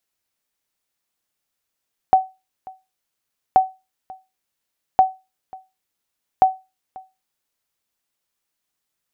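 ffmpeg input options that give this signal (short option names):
-f lavfi -i "aevalsrc='0.596*(sin(2*PI*756*mod(t,1.43))*exp(-6.91*mod(t,1.43)/0.25)+0.0631*sin(2*PI*756*max(mod(t,1.43)-0.54,0))*exp(-6.91*max(mod(t,1.43)-0.54,0)/0.25))':d=5.72:s=44100"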